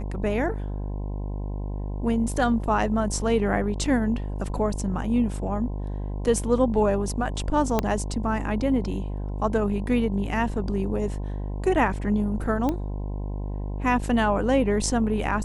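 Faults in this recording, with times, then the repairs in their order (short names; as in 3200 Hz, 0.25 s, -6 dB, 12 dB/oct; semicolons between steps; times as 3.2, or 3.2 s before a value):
buzz 50 Hz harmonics 21 -30 dBFS
7.79 pop -8 dBFS
12.69 pop -14 dBFS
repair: de-click; de-hum 50 Hz, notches 21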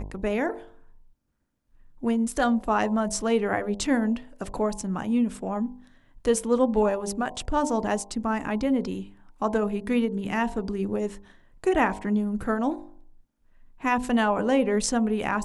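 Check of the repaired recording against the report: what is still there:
7.79 pop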